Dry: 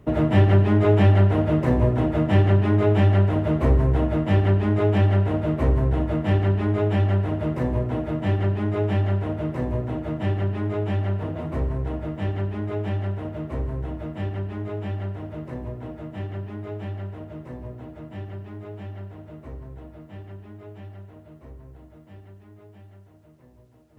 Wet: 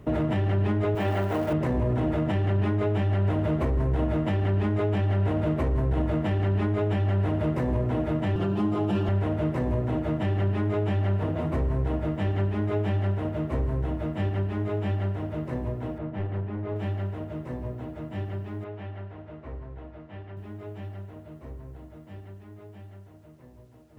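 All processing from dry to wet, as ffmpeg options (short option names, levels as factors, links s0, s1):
-filter_complex "[0:a]asettb=1/sr,asplit=3[s0][s1][s2];[s0]atrim=end=0.954[s3];[s1]atrim=start=0.95:end=1.53,asetpts=PTS-STARTPTS,afade=t=in:d=0.004:c=qsin,afade=t=out:st=0.576:d=0.004:c=qsin,aeval=exprs='val(0)+0.5*0.02*sgn(val(0))':c=same,lowpass=f=1200:p=1,aemphasis=mode=production:type=riaa[s4];[s2]atrim=start=1.526[s5];[s3][s4]acrossfade=d=0.004:c1=hsin:c2=qsin[s6];[s6][s5]acrossfade=d=0.004:c1=qsin:c2=hsin,asettb=1/sr,asplit=3[s7][s8][s9];[s7]atrim=end=8.354[s10];[s8]atrim=start=8.35:end=9.09,asetpts=PTS-STARTPTS,afade=t=in:d=0.004:c=qsin,afade=t=out:st=0.736:d=0.004:c=qsin,equalizer=f=2000:w=3.1:g=-13,aecho=1:1:5.8:0.99,atrim=end_sample=32634[s11];[s9]atrim=start=9.086[s12];[s10][s11]acrossfade=d=0.004:c1=hsin:c2=qsin[s13];[s13][s12]acrossfade=d=0.004:c1=qsin:c2=hsin,asettb=1/sr,asplit=3[s14][s15][s16];[s14]atrim=end=15.984[s17];[s15]atrim=start=15.98:end=16.76,asetpts=PTS-STARTPTS,afade=t=in:d=0.004:c=qsin,afade=t=out:st=0.776:d=0.004:c=qsin,aeval=exprs='clip(val(0),-1,0.0282)':c=same,adynamicsmooth=sensitivity=2:basefreq=2500[s18];[s16]atrim=start=16.756[s19];[s17][s18]acrossfade=d=0.004:c1=hsin:c2=qsin[s20];[s20][s19]acrossfade=d=0.004:c1=qsin:c2=hsin,asettb=1/sr,asplit=3[s21][s22][s23];[s21]atrim=end=18.644[s24];[s22]atrim=start=18.64:end=20.37,asetpts=PTS-STARTPTS,afade=t=in:d=0.004:c=qsin,afade=t=out:st=1.726:d=0.004:c=qsin,lowpass=3300,equalizer=f=170:w=0.49:g=-6[s25];[s23]atrim=start=20.366[s26];[s24][s25]acrossfade=d=0.004:c1=hsin:c2=qsin[s27];[s27][s26]acrossfade=d=0.004:c1=qsin:c2=hsin,acompressor=threshold=0.0501:ratio=1.5,alimiter=limit=0.0944:level=0:latency=1:release=19,volume=1.33"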